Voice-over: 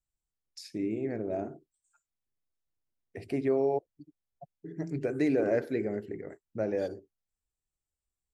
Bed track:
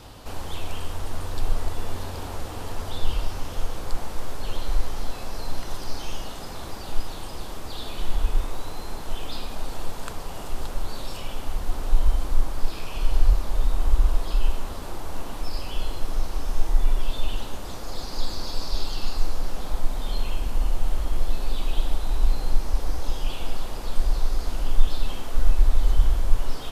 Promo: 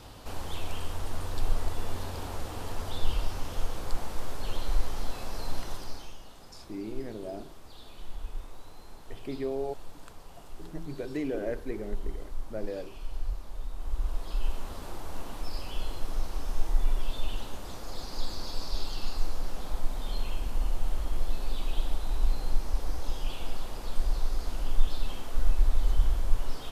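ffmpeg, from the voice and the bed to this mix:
-filter_complex "[0:a]adelay=5950,volume=-5.5dB[a];[1:a]volume=6dB,afade=t=out:st=5.6:d=0.55:silence=0.266073,afade=t=in:st=13.75:d=1.04:silence=0.334965[b];[a][b]amix=inputs=2:normalize=0"

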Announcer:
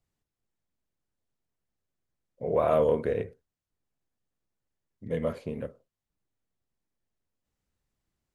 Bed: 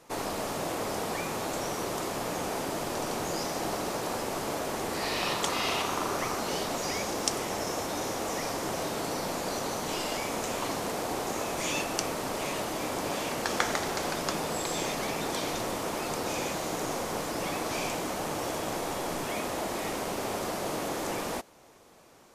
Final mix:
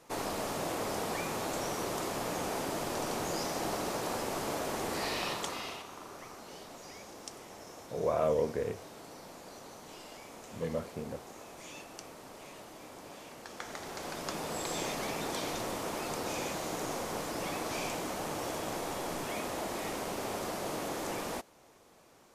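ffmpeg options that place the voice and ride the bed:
-filter_complex "[0:a]adelay=5500,volume=-5.5dB[a];[1:a]volume=10dB,afade=t=out:st=4.98:d=0.86:silence=0.199526,afade=t=in:st=13.56:d=1.15:silence=0.237137[b];[a][b]amix=inputs=2:normalize=0"

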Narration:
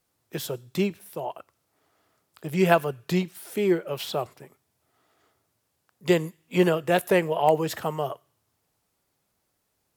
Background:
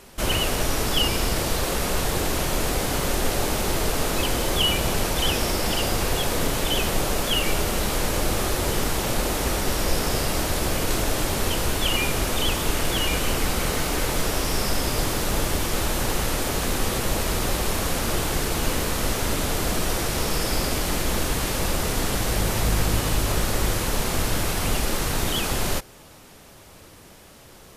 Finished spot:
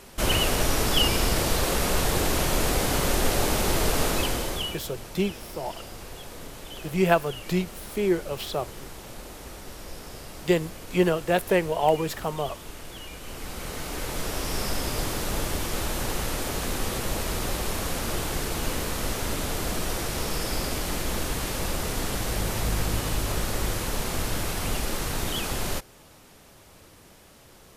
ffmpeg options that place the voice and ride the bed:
-filter_complex "[0:a]adelay=4400,volume=-1dB[a];[1:a]volume=12.5dB,afade=t=out:st=4.04:d=0.76:silence=0.141254,afade=t=in:st=13.19:d=1.42:silence=0.237137[b];[a][b]amix=inputs=2:normalize=0"

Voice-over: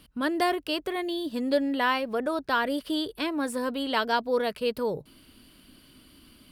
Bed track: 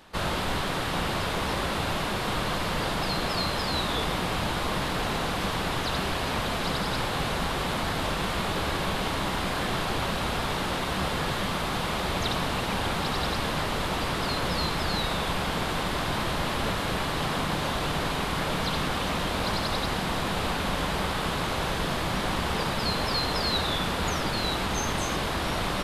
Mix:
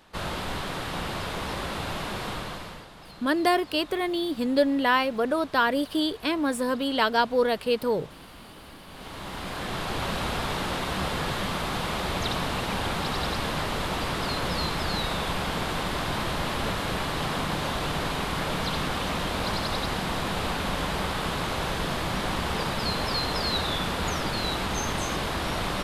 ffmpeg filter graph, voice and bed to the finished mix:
-filter_complex "[0:a]adelay=3050,volume=3dB[a];[1:a]volume=15dB,afade=t=out:st=2.23:d=0.64:silence=0.16788,afade=t=in:st=8.87:d=1.27:silence=0.11885[b];[a][b]amix=inputs=2:normalize=0"

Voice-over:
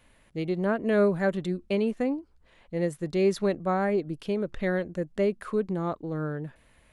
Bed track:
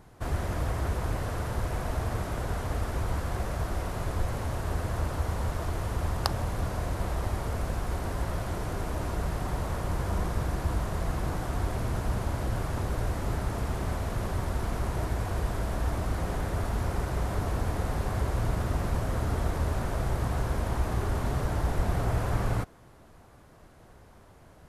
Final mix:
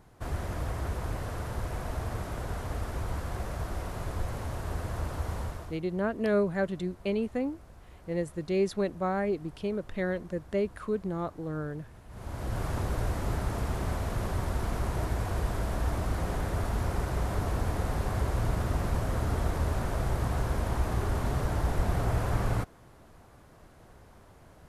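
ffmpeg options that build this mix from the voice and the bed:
-filter_complex "[0:a]adelay=5350,volume=-3.5dB[a];[1:a]volume=17dB,afade=t=out:st=5.38:d=0.42:silence=0.133352,afade=t=in:st=12.09:d=0.58:silence=0.0944061[b];[a][b]amix=inputs=2:normalize=0"

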